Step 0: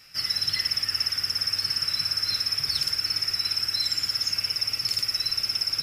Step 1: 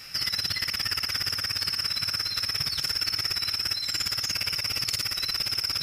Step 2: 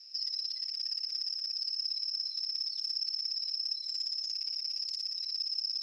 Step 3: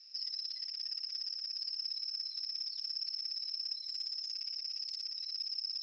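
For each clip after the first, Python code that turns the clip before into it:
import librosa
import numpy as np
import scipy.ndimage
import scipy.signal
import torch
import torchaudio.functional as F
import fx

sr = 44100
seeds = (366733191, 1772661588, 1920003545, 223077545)

y1 = fx.over_compress(x, sr, threshold_db=-33.0, ratio=-1.0)
y1 = F.gain(torch.from_numpy(y1), 3.5).numpy()
y2 = fx.bandpass_q(y1, sr, hz=5200.0, q=10.0)
y2 = F.gain(torch.from_numpy(y2), -4.5).numpy()
y3 = fx.air_absorb(y2, sr, metres=90.0)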